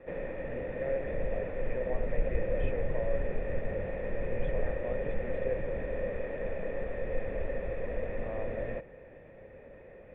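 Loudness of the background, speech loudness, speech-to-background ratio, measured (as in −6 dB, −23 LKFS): −36.5 LKFS, −40.5 LKFS, −4.0 dB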